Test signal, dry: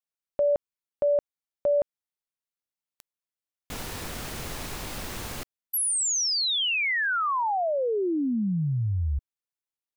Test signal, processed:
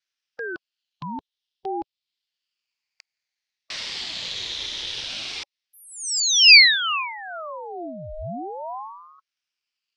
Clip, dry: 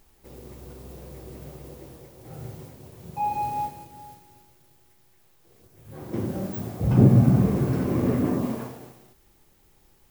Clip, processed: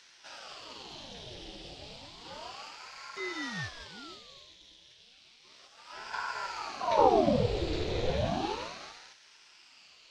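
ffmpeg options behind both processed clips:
-filter_complex "[0:a]afftfilt=real='re*pow(10,6/40*sin(2*PI*(1.3*log(max(b,1)*sr/1024/100)/log(2)-(-0.55)*(pts-256)/sr)))':imag='im*pow(10,6/40*sin(2*PI*(1.3*log(max(b,1)*sr/1024/100)/log(2)-(-0.55)*(pts-256)/sr)))':win_size=1024:overlap=0.75,asplit=2[a][b];[b]acompressor=threshold=-37dB:ratio=5:attack=0.11:release=438:knee=1:detection=peak,volume=-1dB[c];[a][c]amix=inputs=2:normalize=0,highpass=f=120:w=0.5412,highpass=f=120:w=1.3066,equalizer=f=430:t=q:w=4:g=-5,equalizer=f=910:t=q:w=4:g=-4,equalizer=f=2.4k:t=q:w=4:g=-5,equalizer=f=3.6k:t=q:w=4:g=5,lowpass=f=4.3k:w=0.5412,lowpass=f=4.3k:w=1.3066,aexciter=amount=10.8:drive=1.5:freq=2.2k,aeval=exprs='val(0)*sin(2*PI*700*n/s+700*0.75/0.32*sin(2*PI*0.32*n/s))':c=same,volume=-5dB"

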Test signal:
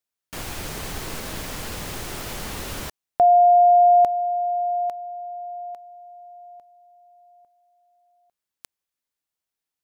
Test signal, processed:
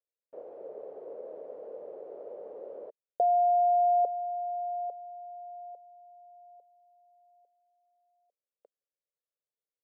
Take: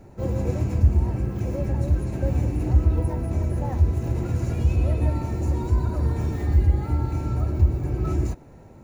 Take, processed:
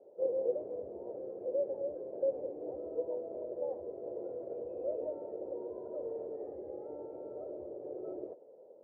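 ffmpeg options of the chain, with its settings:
-af "asuperpass=centerf=510:order=4:qfactor=2.9,volume=1.5dB"

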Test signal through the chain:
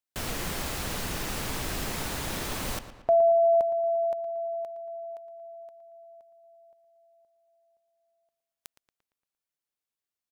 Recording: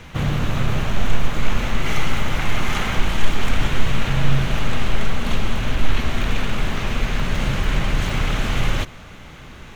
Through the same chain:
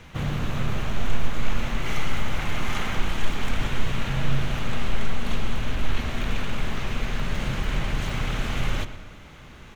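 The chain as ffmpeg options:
-filter_complex "[0:a]asplit=2[a][b];[b]adelay=115,lowpass=f=3.8k:p=1,volume=-12dB,asplit=2[c][d];[d]adelay=115,lowpass=f=3.8k:p=1,volume=0.54,asplit=2[e][f];[f]adelay=115,lowpass=f=3.8k:p=1,volume=0.54,asplit=2[g][h];[h]adelay=115,lowpass=f=3.8k:p=1,volume=0.54,asplit=2[i][j];[j]adelay=115,lowpass=f=3.8k:p=1,volume=0.54,asplit=2[k][l];[l]adelay=115,lowpass=f=3.8k:p=1,volume=0.54[m];[a][c][e][g][i][k][m]amix=inputs=7:normalize=0,volume=-6dB"

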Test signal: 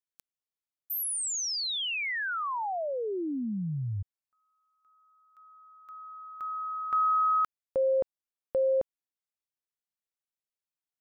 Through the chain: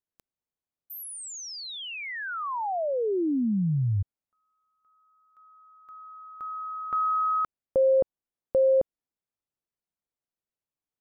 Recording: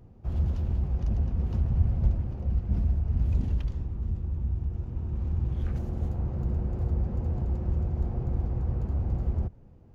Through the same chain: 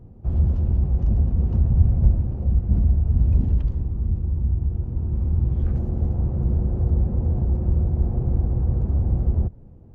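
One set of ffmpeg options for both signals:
-af "tiltshelf=f=1.2k:g=7.5"

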